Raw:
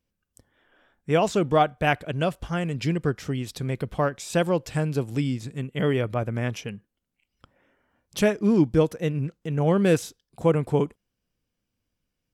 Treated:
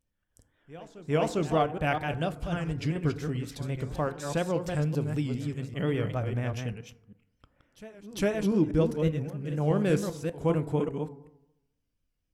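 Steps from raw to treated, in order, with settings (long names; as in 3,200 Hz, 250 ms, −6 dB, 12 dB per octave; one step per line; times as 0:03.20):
delay that plays each chunk backwards 198 ms, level −6 dB
low-shelf EQ 80 Hz +10.5 dB
on a send: backwards echo 404 ms −19 dB
on the sum: feedback delay network reverb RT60 0.89 s, low-frequency decay 1×, high-frequency decay 0.35×, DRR 12.5 dB
pitch vibrato 4.1 Hz 75 cents
level −7 dB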